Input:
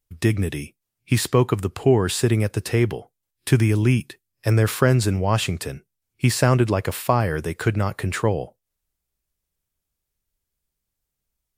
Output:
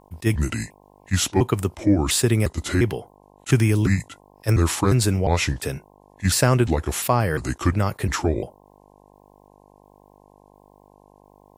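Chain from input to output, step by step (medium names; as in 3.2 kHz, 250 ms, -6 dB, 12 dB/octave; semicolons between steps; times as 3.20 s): pitch shift switched off and on -4.5 st, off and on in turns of 351 ms; treble shelf 4.6 kHz +5 dB; in parallel at +1.5 dB: compression, threshold -26 dBFS, peak gain reduction 14.5 dB; on the sum: mains buzz 50 Hz, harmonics 21, -51 dBFS 0 dB/octave; attacks held to a fixed rise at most 540 dB/s; trim -2.5 dB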